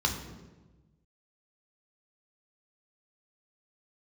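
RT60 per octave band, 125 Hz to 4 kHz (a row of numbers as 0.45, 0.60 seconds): 1.7, 1.5, 1.3, 1.1, 0.95, 0.80 seconds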